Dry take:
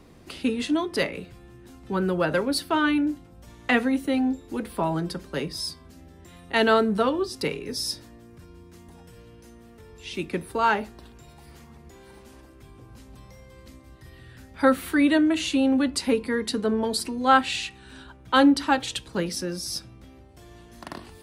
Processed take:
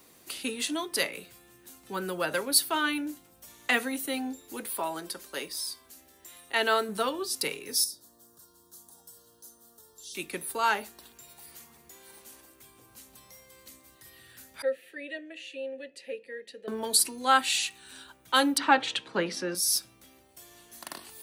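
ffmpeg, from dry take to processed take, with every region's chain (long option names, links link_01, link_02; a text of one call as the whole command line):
ffmpeg -i in.wav -filter_complex "[0:a]asettb=1/sr,asplit=3[link_01][link_02][link_03];[link_01]atrim=end=4.674[link_04];[link_02]atrim=start=4.67:end=6.89,asetpts=PTS-STARTPTS,afade=type=in:duration=0.004:curve=qsin,afade=type=out:start_time=2.216:duration=0.004:curve=qsin,equalizer=frequency=140:width=1.3:gain=-11,acrossover=split=3200[link_05][link_06];[link_06]acompressor=threshold=-37dB:ratio=4:attack=1:release=60[link_07];[link_05][link_07]amix=inputs=2:normalize=0[link_08];[link_03]atrim=start=6.886[link_09];[link_04][link_08]acrossfade=duration=0.004:curve1=hsin:curve2=qsin[link_10];[link_10][link_09]acrossfade=duration=0.004:curve1=qsin:curve2=hsin,asettb=1/sr,asplit=3[link_11][link_12][link_13];[link_11]atrim=end=7.844[link_14];[link_12]atrim=start=7.84:end=10.15,asetpts=PTS-STARTPTS,afade=type=in:duration=0.004:curve=qsin,afade=type=out:start_time=2.306:duration=0.004:curve=qsin,acrossover=split=620|3300[link_15][link_16][link_17];[link_15]acompressor=threshold=-52dB:ratio=4[link_18];[link_16]acompressor=threshold=-58dB:ratio=4[link_19];[link_17]acompressor=threshold=-43dB:ratio=4[link_20];[link_18][link_19][link_20]amix=inputs=3:normalize=0,asuperstop=centerf=2300:order=4:qfactor=1[link_21];[link_13]atrim=start=10.146[link_22];[link_14][link_21]acrossfade=duration=0.004:curve1=hsin:curve2=qsin[link_23];[link_23][link_22]acrossfade=duration=0.004:curve1=qsin:curve2=hsin,asettb=1/sr,asplit=3[link_24][link_25][link_26];[link_24]atrim=end=14.624[link_27];[link_25]atrim=start=14.62:end=16.68,asetpts=PTS-STARTPTS,afade=type=in:duration=0.004:curve=qsin,afade=type=out:start_time=2.056:duration=0.004:curve=qsin,asplit=3[link_28][link_29][link_30];[link_28]bandpass=frequency=530:width_type=q:width=8,volume=0dB[link_31];[link_29]bandpass=frequency=1840:width_type=q:width=8,volume=-6dB[link_32];[link_30]bandpass=frequency=2480:width_type=q:width=8,volume=-9dB[link_33];[link_31][link_32][link_33]amix=inputs=3:normalize=0,equalizer=frequency=120:width=1.4:gain=14,bandreject=frequency=1500:width=9.2[link_34];[link_26]atrim=start=16.676[link_35];[link_27][link_34]acrossfade=duration=0.004:curve1=hsin:curve2=qsin[link_36];[link_36][link_35]acrossfade=duration=0.004:curve1=qsin:curve2=hsin,asettb=1/sr,asplit=3[link_37][link_38][link_39];[link_37]atrim=end=18.584[link_40];[link_38]atrim=start=18.58:end=19.55,asetpts=PTS-STARTPTS,afade=type=in:duration=0.004:curve=qsin,afade=type=out:start_time=0.966:duration=0.004:curve=qsin,acontrast=88,highpass=140,lowpass=2300[link_41];[link_39]atrim=start=19.546[link_42];[link_40][link_41]acrossfade=duration=0.004:curve1=hsin:curve2=qsin[link_43];[link_43][link_42]acrossfade=duration=0.004:curve1=qsin:curve2=hsin,aemphasis=mode=production:type=riaa,bandreject=frequency=5100:width=22,volume=-4.5dB" out.wav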